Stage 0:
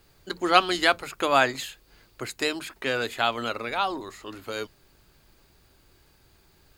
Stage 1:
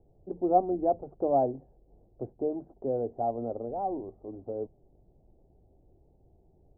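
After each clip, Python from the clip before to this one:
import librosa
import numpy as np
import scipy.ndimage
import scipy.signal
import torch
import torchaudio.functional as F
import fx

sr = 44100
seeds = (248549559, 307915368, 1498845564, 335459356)

y = scipy.signal.sosfilt(scipy.signal.cheby1(5, 1.0, 760.0, 'lowpass', fs=sr, output='sos'), x)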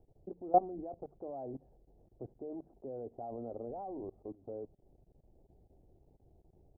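y = fx.level_steps(x, sr, step_db=21)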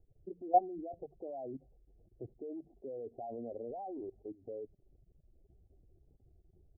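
y = fx.spec_expand(x, sr, power=1.7)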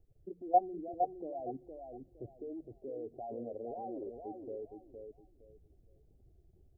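y = fx.echo_feedback(x, sr, ms=463, feedback_pct=24, wet_db=-6.0)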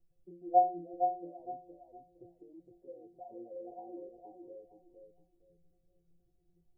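y = fx.stiff_resonator(x, sr, f0_hz=170.0, decay_s=0.4, stiffness=0.008)
y = F.gain(torch.from_numpy(y), 8.0).numpy()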